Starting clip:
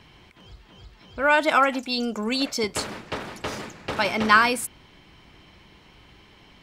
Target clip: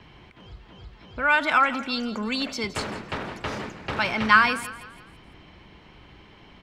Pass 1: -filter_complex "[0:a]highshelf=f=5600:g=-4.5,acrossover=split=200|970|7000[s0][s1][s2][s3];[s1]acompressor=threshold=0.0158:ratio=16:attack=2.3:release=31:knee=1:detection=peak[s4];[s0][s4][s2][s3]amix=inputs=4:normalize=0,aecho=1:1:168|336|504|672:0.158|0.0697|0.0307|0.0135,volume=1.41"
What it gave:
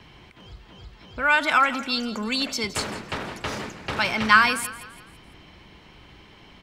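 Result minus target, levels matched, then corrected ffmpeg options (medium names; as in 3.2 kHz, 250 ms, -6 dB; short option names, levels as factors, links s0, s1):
8 kHz band +6.5 dB
-filter_complex "[0:a]highshelf=f=5600:g=-16,acrossover=split=200|970|7000[s0][s1][s2][s3];[s1]acompressor=threshold=0.0158:ratio=16:attack=2.3:release=31:knee=1:detection=peak[s4];[s0][s4][s2][s3]amix=inputs=4:normalize=0,aecho=1:1:168|336|504|672:0.158|0.0697|0.0307|0.0135,volume=1.41"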